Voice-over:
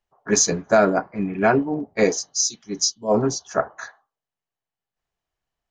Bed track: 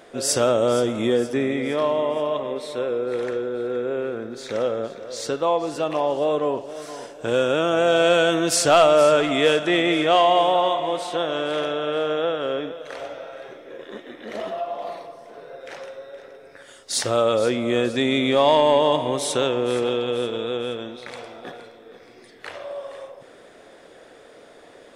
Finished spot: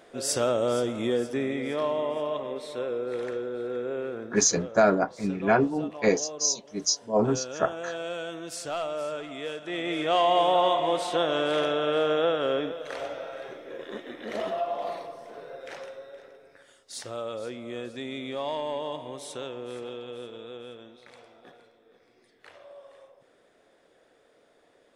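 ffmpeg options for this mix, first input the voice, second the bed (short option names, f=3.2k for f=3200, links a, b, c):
-filter_complex "[0:a]adelay=4050,volume=-4dB[a];[1:a]volume=10dB,afade=t=out:st=4.24:d=0.34:silence=0.281838,afade=t=in:st=9.6:d=1.25:silence=0.158489,afade=t=out:st=15.24:d=1.67:silence=0.199526[b];[a][b]amix=inputs=2:normalize=0"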